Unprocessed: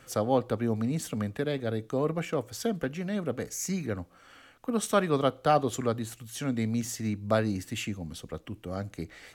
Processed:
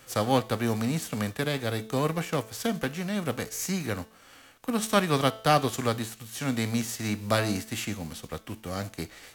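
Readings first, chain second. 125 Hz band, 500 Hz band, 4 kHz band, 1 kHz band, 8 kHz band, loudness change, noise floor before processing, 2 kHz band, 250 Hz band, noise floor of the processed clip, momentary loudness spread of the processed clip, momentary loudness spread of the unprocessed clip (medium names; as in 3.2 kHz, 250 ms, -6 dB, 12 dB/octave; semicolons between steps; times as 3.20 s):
+2.0 dB, -0.5 dB, +7.0 dB, +2.5 dB, +2.5 dB, +1.5 dB, -57 dBFS, +5.5 dB, +1.0 dB, -54 dBFS, 12 LU, 13 LU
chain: formants flattened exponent 0.6; de-hum 220 Hz, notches 31; trim +1.5 dB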